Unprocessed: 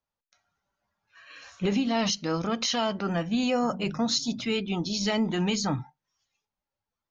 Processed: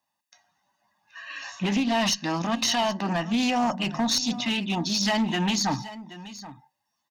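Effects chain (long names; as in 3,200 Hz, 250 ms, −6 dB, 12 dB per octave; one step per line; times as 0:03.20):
high-pass filter 230 Hz 12 dB per octave
comb filter 1.1 ms, depth 86%
in parallel at +1 dB: downward compressor, threshold −38 dBFS, peak gain reduction 16 dB
on the sum: asymmetric clip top −21.5 dBFS
on a send: single-tap delay 777 ms −16 dB
on the sum: highs frequency-modulated by the lows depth 0.11 ms
level +1 dB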